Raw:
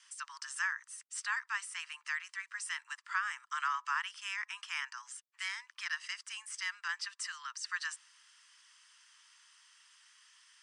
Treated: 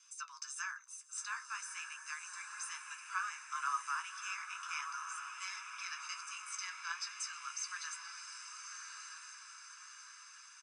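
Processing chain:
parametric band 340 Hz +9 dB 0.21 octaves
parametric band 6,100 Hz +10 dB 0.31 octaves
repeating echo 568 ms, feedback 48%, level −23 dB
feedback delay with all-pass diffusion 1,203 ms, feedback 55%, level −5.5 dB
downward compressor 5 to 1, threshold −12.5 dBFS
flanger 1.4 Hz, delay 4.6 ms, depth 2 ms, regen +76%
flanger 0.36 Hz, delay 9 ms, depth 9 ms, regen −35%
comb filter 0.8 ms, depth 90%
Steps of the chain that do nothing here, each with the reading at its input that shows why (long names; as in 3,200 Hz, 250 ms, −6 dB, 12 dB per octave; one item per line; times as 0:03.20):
parametric band 340 Hz: nothing at its input below 760 Hz
downward compressor, threshold −12.5 dBFS: peak of its input −20.5 dBFS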